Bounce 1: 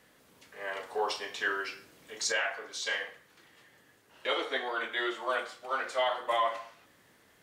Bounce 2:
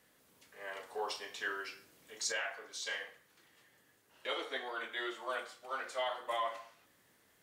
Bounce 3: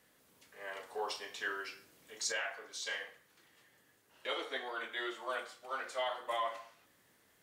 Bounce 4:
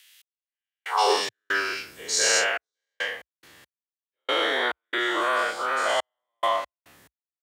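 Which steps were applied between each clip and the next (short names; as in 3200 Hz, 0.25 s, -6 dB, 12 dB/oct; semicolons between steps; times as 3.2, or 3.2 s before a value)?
high shelf 7000 Hz +7.5 dB; gain -7.5 dB
nothing audible
spectral dilation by 0.24 s; step gate "x...xx.xxxxx..x." 70 bpm -60 dB; high-pass sweep 2900 Hz -> 62 Hz, 0.81–1.39; gain +8 dB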